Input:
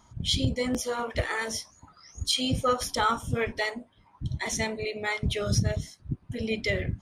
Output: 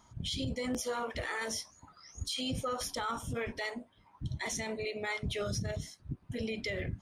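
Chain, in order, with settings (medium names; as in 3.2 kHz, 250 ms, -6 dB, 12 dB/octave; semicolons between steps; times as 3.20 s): bass shelf 170 Hz -3.5 dB; peak limiter -24.5 dBFS, peak gain reduction 10.5 dB; trim -2.5 dB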